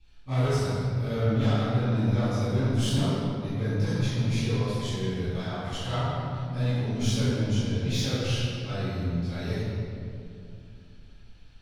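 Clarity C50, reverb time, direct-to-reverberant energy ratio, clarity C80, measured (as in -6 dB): -5.0 dB, 2.6 s, -16.0 dB, -2.5 dB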